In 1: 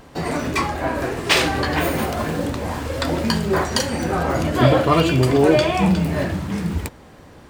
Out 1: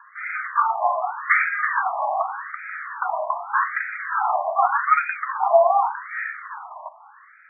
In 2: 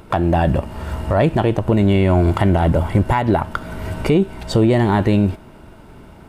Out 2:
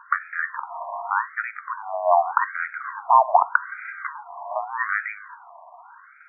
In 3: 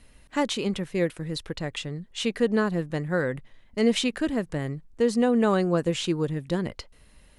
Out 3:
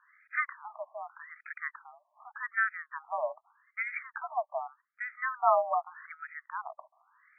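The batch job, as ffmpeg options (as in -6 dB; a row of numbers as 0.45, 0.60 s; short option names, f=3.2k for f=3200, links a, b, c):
-af "highpass=f=530:t=q:w=0.5412,highpass=f=530:t=q:w=1.307,lowpass=f=2.3k:t=q:w=0.5176,lowpass=f=2.3k:t=q:w=0.7071,lowpass=f=2.3k:t=q:w=1.932,afreqshift=64,afftfilt=real='re*between(b*sr/1024,820*pow(1800/820,0.5+0.5*sin(2*PI*0.84*pts/sr))/1.41,820*pow(1800/820,0.5+0.5*sin(2*PI*0.84*pts/sr))*1.41)':imag='im*between(b*sr/1024,820*pow(1800/820,0.5+0.5*sin(2*PI*0.84*pts/sr))/1.41,820*pow(1800/820,0.5+0.5*sin(2*PI*0.84*pts/sr))*1.41)':win_size=1024:overlap=0.75,volume=5.5dB"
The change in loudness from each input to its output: -2.5, -6.5, -7.0 LU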